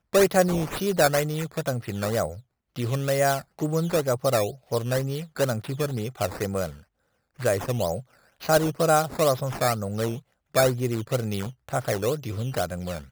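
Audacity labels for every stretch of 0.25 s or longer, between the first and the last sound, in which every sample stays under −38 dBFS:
2.400000	2.760000	silence
6.780000	7.390000	silence
8.010000	8.410000	silence
10.190000	10.550000	silence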